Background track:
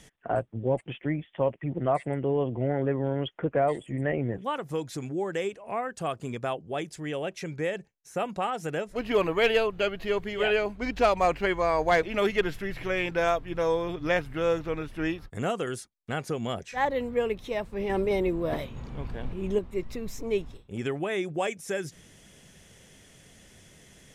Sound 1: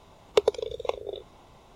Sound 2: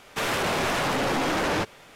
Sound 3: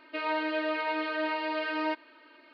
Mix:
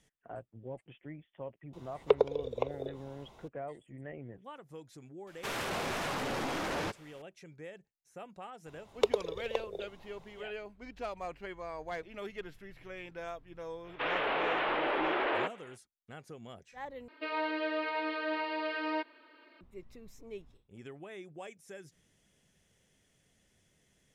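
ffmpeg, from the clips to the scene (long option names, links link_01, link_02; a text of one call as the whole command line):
ffmpeg -i bed.wav -i cue0.wav -i cue1.wav -i cue2.wav -filter_complex "[1:a]asplit=2[link_01][link_02];[2:a]asplit=2[link_03][link_04];[0:a]volume=-17dB[link_05];[link_01]acrossover=split=2800[link_06][link_07];[link_07]acompressor=threshold=-58dB:ratio=4:attack=1:release=60[link_08];[link_06][link_08]amix=inputs=2:normalize=0[link_09];[link_04]highpass=frequency=250:width_type=q:width=0.5412,highpass=frequency=250:width_type=q:width=1.307,lowpass=frequency=3200:width_type=q:width=0.5176,lowpass=frequency=3200:width_type=q:width=0.7071,lowpass=frequency=3200:width_type=q:width=1.932,afreqshift=53[link_10];[3:a]equalizer=frequency=470:width_type=o:width=0.42:gain=3[link_11];[link_05]asplit=2[link_12][link_13];[link_12]atrim=end=17.084[link_14];[link_11]atrim=end=2.53,asetpts=PTS-STARTPTS,volume=-4dB[link_15];[link_13]atrim=start=19.606[link_16];[link_09]atrim=end=1.75,asetpts=PTS-STARTPTS,volume=-3.5dB,afade=type=in:duration=0.004:curve=hsin,afade=type=out:start_time=1.746:duration=0.004:curve=hsin,adelay=1730[link_17];[link_03]atrim=end=1.95,asetpts=PTS-STARTPTS,volume=-10dB,afade=type=in:duration=0.004:curve=hsin,afade=type=out:start_time=1.946:duration=0.004:curve=hsin,adelay=5270[link_18];[link_02]atrim=end=1.75,asetpts=PTS-STARTPTS,volume=-6dB,afade=type=in:duration=0.004:curve=hsin,afade=type=out:start_time=1.746:duration=0.004:curve=hsin,adelay=381906S[link_19];[link_10]atrim=end=1.95,asetpts=PTS-STARTPTS,volume=-5.5dB,afade=type=in:duration=0.05,afade=type=out:start_time=1.9:duration=0.05,adelay=13830[link_20];[link_14][link_15]acrossfade=duration=0.004:curve1=hsin:curve2=hsin[link_21];[link_21][link_16]acrossfade=duration=0.004:curve1=hsin:curve2=hsin[link_22];[link_22][link_17][link_18][link_19][link_20]amix=inputs=5:normalize=0" out.wav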